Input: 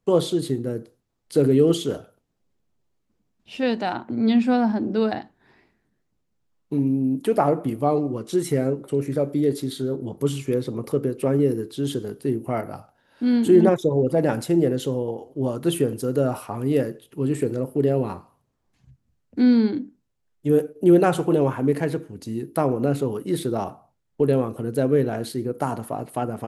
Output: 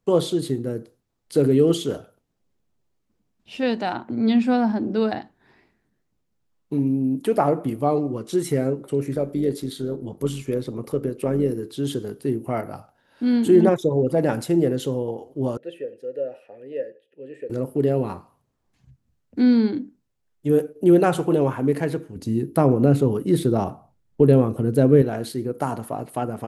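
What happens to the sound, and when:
9.15–11.63 AM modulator 95 Hz, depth 25%
15.57–17.5 vowel filter e
22.16–25.02 low shelf 380 Hz +8.5 dB

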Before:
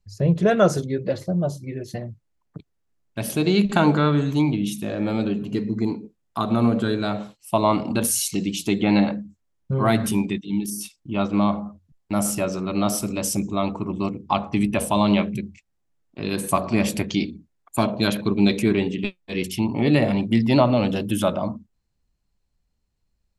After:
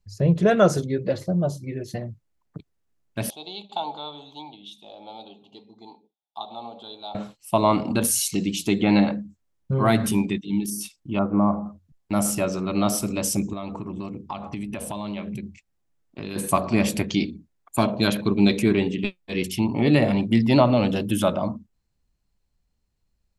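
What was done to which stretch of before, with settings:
3.3–7.15 double band-pass 1700 Hz, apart 2.1 oct
11.19–11.66 LPF 1400 Hz 24 dB/oct
13.53–16.36 compressor, threshold -28 dBFS

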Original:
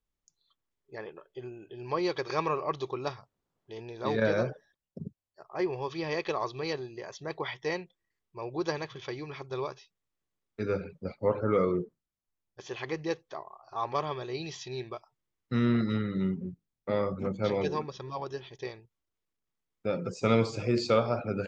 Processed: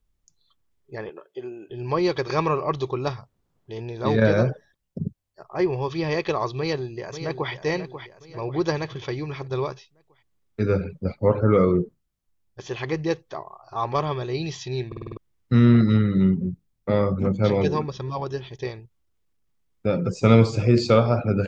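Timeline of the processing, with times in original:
1.09–1.7 Chebyshev high-pass 310 Hz
6.58–7.52 echo throw 0.54 s, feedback 50%, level -10 dB
14.87 stutter in place 0.05 s, 6 plays
whole clip: low shelf 180 Hz +11.5 dB; gain +5.5 dB

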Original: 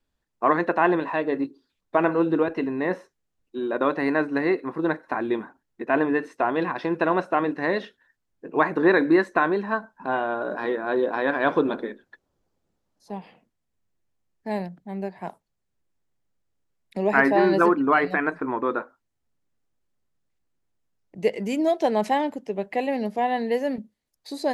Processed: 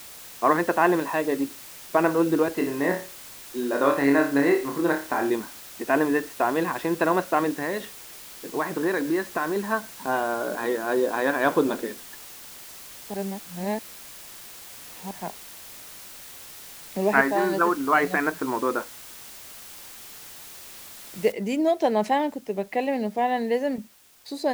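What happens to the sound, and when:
2.57–5.3 flutter echo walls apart 4.9 m, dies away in 0.35 s
7.62–9.56 compressor 2:1, threshold -26 dBFS
13.14–15.11 reverse
17.21–17.93 rippled Chebyshev low-pass 4800 Hz, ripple 6 dB
21.32 noise floor step -43 dB -56 dB

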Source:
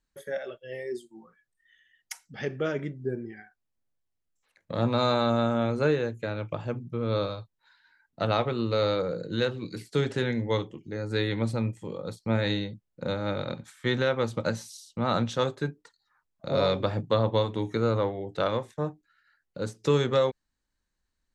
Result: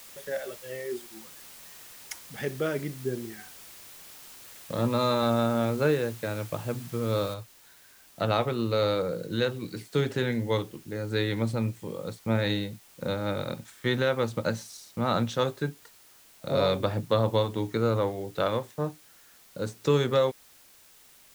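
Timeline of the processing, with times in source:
4.77–5.23 notch comb 750 Hz
7.34 noise floor step -48 dB -56 dB

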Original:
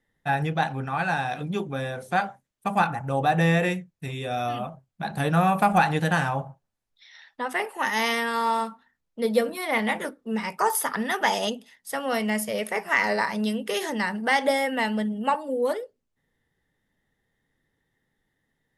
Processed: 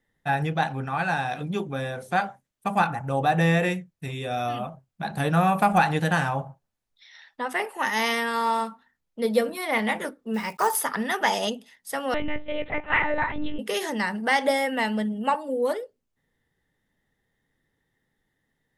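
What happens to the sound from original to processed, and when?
10.34–10.81 block floating point 5-bit
12.14–13.59 monotone LPC vocoder at 8 kHz 300 Hz

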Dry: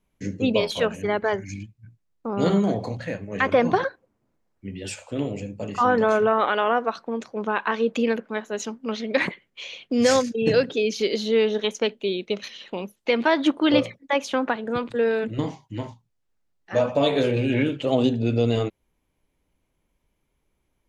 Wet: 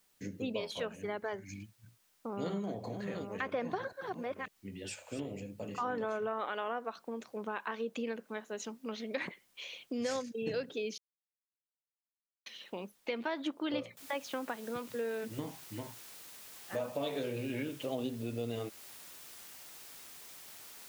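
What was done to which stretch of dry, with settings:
2.27–6.12 reverse delay 0.553 s, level -7.5 dB
10.98–12.46 mute
13.97 noise floor step -63 dB -43 dB
whole clip: compressor 2:1, threshold -29 dBFS; low shelf 82 Hz -9 dB; gain -8.5 dB

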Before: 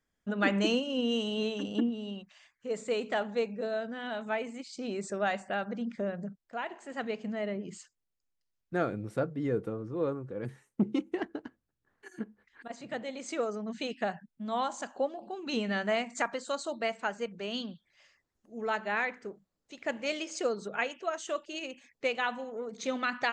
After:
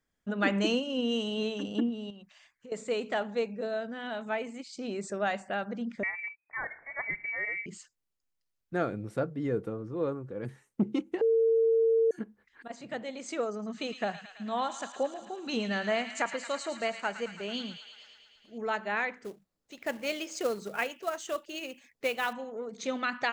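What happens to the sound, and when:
2.1–2.72 compressor, threshold -45 dBFS
6.03–7.66 inverted band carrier 2500 Hz
11.21–12.11 bleep 453 Hz -21 dBFS
13.48–18.58 thin delay 0.11 s, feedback 73%, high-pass 1500 Hz, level -8 dB
19.24–22.33 short-mantissa float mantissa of 2-bit

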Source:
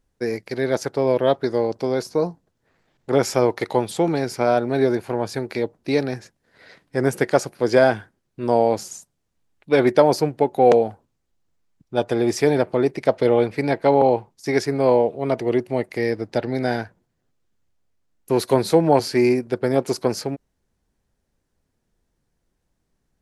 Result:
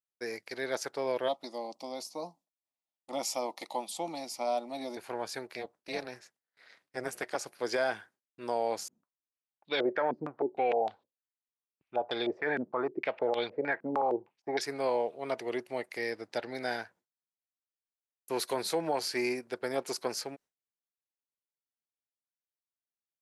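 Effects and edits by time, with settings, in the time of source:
1.28–4.97 fixed phaser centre 420 Hz, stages 6
5.47–7.46 AM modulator 250 Hz, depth 75%
8.88–14.61 stepped low-pass 6.5 Hz 240–3800 Hz
whole clip: gate with hold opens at -47 dBFS; HPF 1100 Hz 6 dB/oct; limiter -15 dBFS; gain -5 dB

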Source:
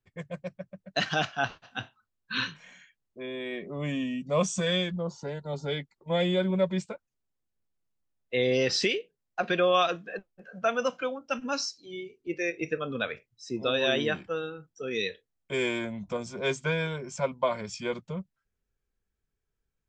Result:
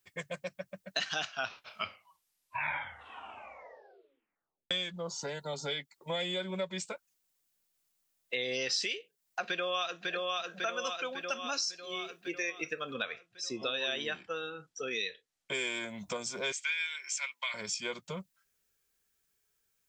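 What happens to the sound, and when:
1.25 tape stop 3.46 s
9.46–10.11 echo throw 0.55 s, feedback 55%, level -4 dB
12.93–15.55 air absorption 60 m
16.52–17.54 resonant high-pass 2100 Hz, resonance Q 2.5
whole clip: tilt +3.5 dB/oct; compressor 3:1, threshold -41 dBFS; gain +5 dB

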